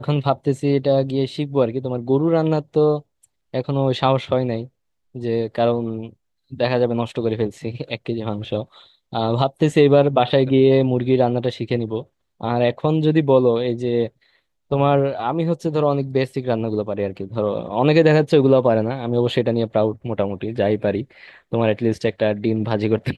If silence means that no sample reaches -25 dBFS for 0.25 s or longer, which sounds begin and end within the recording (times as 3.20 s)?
3.54–4.63 s
5.16–6.07 s
6.53–8.62 s
9.13–12.01 s
12.41–14.07 s
14.71–21.02 s